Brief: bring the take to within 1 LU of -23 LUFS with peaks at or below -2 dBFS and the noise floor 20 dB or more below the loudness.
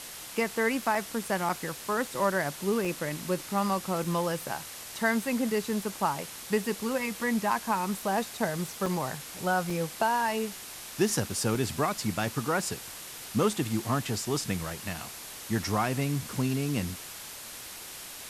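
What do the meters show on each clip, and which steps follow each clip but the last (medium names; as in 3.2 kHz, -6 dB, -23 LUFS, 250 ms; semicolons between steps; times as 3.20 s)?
dropouts 7; longest dropout 3.3 ms; noise floor -43 dBFS; noise floor target -51 dBFS; loudness -30.5 LUFS; peak level -13.5 dBFS; loudness target -23.0 LUFS
-> interpolate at 0.95/1.49/2.85/4.04/8.86/9.70/11.55 s, 3.3 ms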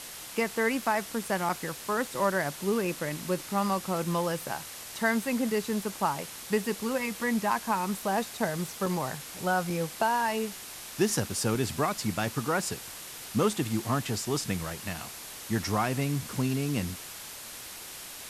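dropouts 0; noise floor -43 dBFS; noise floor target -51 dBFS
-> noise reduction 8 dB, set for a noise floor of -43 dBFS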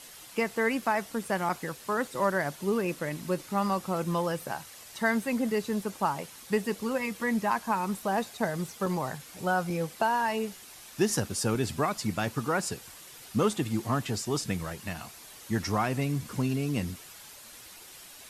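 noise floor -49 dBFS; noise floor target -51 dBFS
-> noise reduction 6 dB, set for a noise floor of -49 dBFS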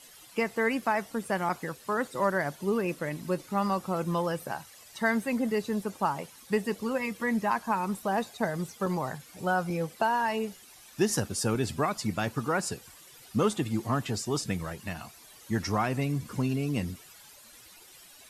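noise floor -53 dBFS; loudness -30.5 LUFS; peak level -14.5 dBFS; loudness target -23.0 LUFS
-> trim +7.5 dB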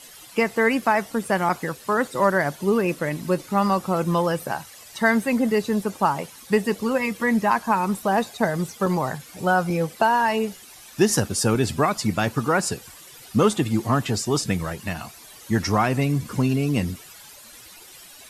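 loudness -23.0 LUFS; peak level -7.0 dBFS; noise floor -45 dBFS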